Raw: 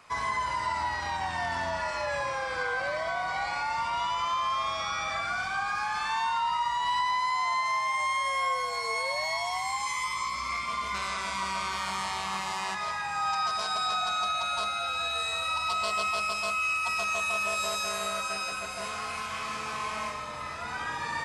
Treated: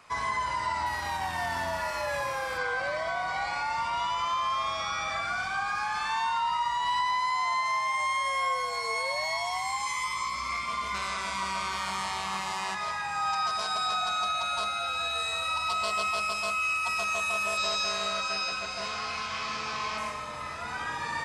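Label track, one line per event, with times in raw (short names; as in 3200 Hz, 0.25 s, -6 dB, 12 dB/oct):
0.860000	2.580000	CVSD 64 kbps
17.570000	19.980000	synth low-pass 5100 Hz, resonance Q 1.9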